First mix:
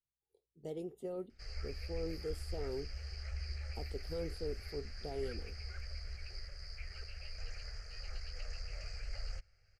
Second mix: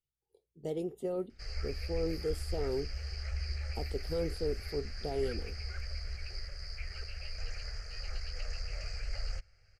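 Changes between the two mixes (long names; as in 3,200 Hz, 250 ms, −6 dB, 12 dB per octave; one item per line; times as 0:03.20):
speech +6.5 dB
background +5.0 dB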